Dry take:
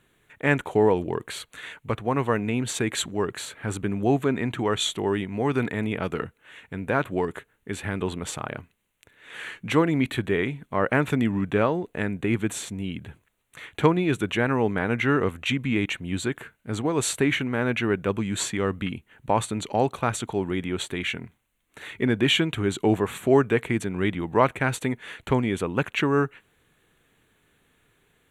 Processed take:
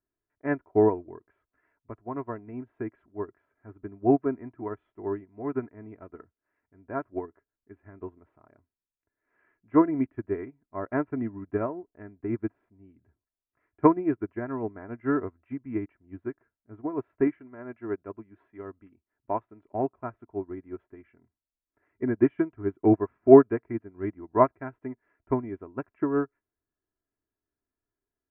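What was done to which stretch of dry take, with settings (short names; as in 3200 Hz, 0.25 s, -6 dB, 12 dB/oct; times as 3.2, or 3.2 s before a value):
17.27–19.65 tone controls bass -5 dB, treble +13 dB
whole clip: Bessel low-pass 1100 Hz, order 8; comb 3 ms, depth 65%; upward expander 2.5:1, over -33 dBFS; gain +5 dB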